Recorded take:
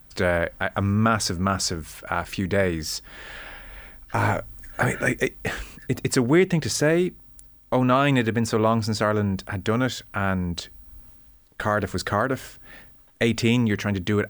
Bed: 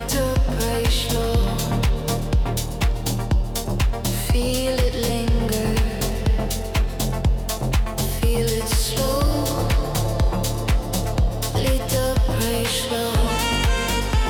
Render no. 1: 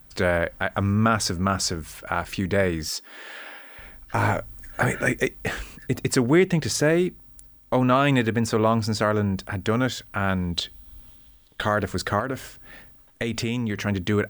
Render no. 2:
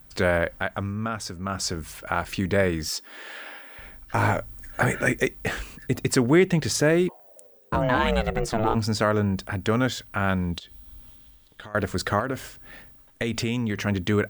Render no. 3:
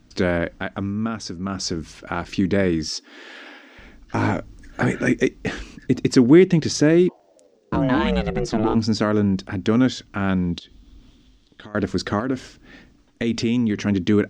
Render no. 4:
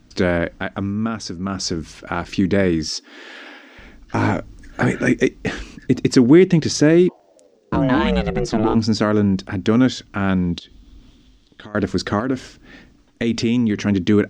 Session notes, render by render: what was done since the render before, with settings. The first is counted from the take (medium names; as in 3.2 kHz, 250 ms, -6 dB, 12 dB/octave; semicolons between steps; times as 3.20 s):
2.89–3.79 s: brick-wall FIR high-pass 230 Hz; 10.29–11.69 s: peaking EQ 3.4 kHz +11.5 dB 0.52 oct; 12.19–13.87 s: compression, threshold -22 dBFS
0.52–1.83 s: dip -9 dB, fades 0.41 s; 7.08–8.74 s: ring modulator 730 Hz -> 200 Hz; 10.58–11.75 s: compression, threshold -39 dBFS
FFT filter 110 Hz 0 dB, 290 Hz +10 dB, 550 Hz -1 dB, 1.5 kHz -2 dB, 5.9 kHz +3 dB, 15 kHz -29 dB
trim +2.5 dB; peak limiter -2 dBFS, peak gain reduction 2 dB